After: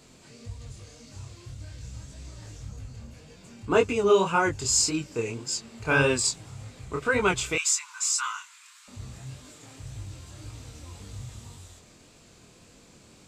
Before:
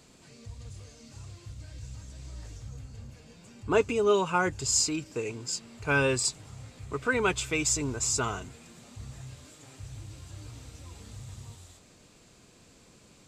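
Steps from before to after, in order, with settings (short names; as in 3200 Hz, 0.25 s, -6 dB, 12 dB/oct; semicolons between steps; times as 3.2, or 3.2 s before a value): 7.55–8.88 steep high-pass 970 Hz 72 dB/oct; chorus 1.8 Hz, delay 19.5 ms, depth 7.3 ms; gain +6 dB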